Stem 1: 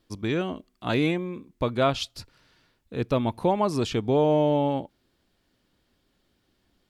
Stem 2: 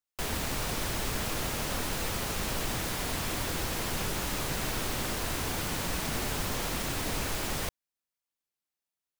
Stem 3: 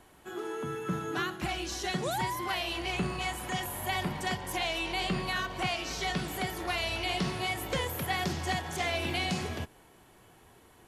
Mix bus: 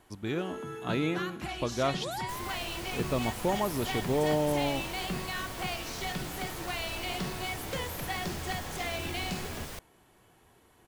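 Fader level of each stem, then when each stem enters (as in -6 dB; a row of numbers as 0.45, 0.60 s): -6.5, -9.0, -4.0 dB; 0.00, 2.10, 0.00 s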